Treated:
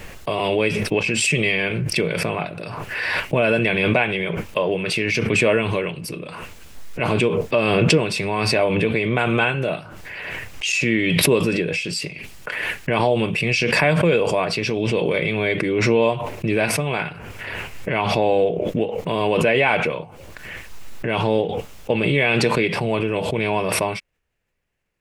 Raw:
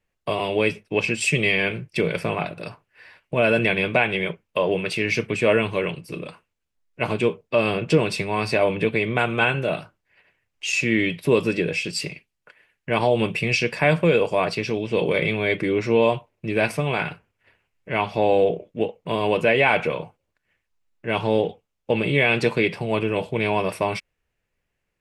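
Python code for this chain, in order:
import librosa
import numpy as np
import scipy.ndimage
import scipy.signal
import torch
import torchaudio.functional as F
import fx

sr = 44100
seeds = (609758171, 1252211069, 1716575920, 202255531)

y = fx.pre_swell(x, sr, db_per_s=21.0)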